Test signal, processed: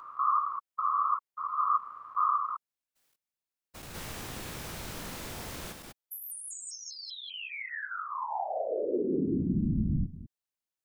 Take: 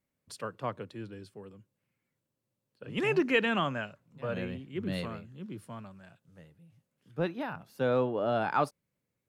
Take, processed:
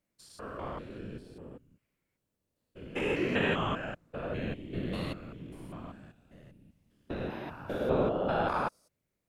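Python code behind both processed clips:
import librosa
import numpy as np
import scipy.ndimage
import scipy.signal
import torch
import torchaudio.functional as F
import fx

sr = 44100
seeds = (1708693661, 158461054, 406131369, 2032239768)

y = fx.spec_steps(x, sr, hold_ms=200)
y = fx.whisperise(y, sr, seeds[0])
y = F.gain(torch.from_numpy(y), 2.0).numpy()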